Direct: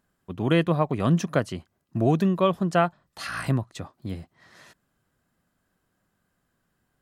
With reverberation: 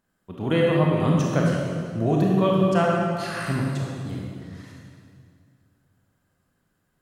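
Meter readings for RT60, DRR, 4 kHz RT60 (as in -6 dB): 2.1 s, -3.0 dB, 1.8 s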